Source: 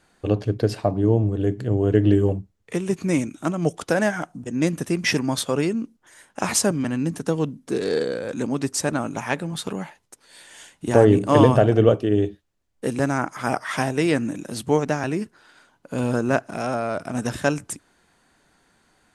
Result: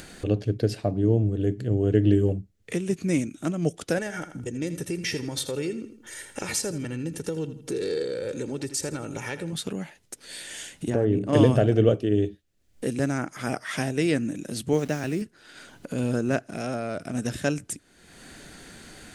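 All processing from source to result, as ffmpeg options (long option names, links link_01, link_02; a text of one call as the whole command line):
ffmpeg -i in.wav -filter_complex "[0:a]asettb=1/sr,asplit=3[link_01][link_02][link_03];[link_01]atrim=end=3.984[link_04];[link_02]atrim=start=3.98:end=9.53,asetpts=PTS-STARTPTS,afade=type=in:duration=0.004:curve=qsin,afade=type=out:start_time=5.546:duration=0.004:curve=qsin,acompressor=threshold=-24dB:ratio=2.5:attack=3.2:release=140:knee=1:detection=peak,aecho=1:1:2.2:0.52,atrim=end_sample=244755,aecho=1:1:81|162|243:0.224|0.0716|0.0229,atrim=end_sample=244755[link_05];[link_03]atrim=start=9.526[link_06];[link_04][link_05]acrossfade=duration=0.004:curve1=hsin:curve2=qsin[link_07];[link_07][link_06]acrossfade=duration=0.004:curve1=qsin:curve2=hsin,asettb=1/sr,asplit=3[link_08][link_09][link_10];[link_08]atrim=end=10.904[link_11];[link_09]atrim=start=10.9:end=11.33,asetpts=PTS-STARTPTS,afade=type=in:duration=0.004:curve=qsin,afade=type=out:start_time=0.426:duration=0.004:curve=qsin,lowpass=frequency=1700:poles=1,acompressor=threshold=-16dB:ratio=2.5:attack=3.2:release=140:knee=1:detection=peak[link_12];[link_10]atrim=start=11.326[link_13];[link_11][link_12]acrossfade=duration=0.004:curve1=hsin:curve2=qsin[link_14];[link_14][link_13]acrossfade=duration=0.004:curve1=qsin:curve2=hsin,asettb=1/sr,asplit=3[link_15][link_16][link_17];[link_15]atrim=end=14.734[link_18];[link_16]atrim=start=14.73:end=15.22,asetpts=PTS-STARTPTS,afade=type=in:duration=0.004:curve=qsin,afade=type=out:start_time=0.486:duration=0.004:curve=qsin,highpass=frequency=47:width=0.5412,highpass=frequency=47:width=1.3066,aeval=exprs='val(0)*gte(abs(val(0)),0.0141)':channel_layout=same[link_19];[link_17]atrim=start=15.216[link_20];[link_18][link_19]acrossfade=duration=0.004:curve1=hsin:curve2=qsin[link_21];[link_21][link_20]acrossfade=duration=0.004:curve1=qsin:curve2=hsin,equalizer=frequency=980:width_type=o:width=0.96:gain=-11,acompressor=mode=upward:threshold=-26dB:ratio=2.5,volume=-2dB" out.wav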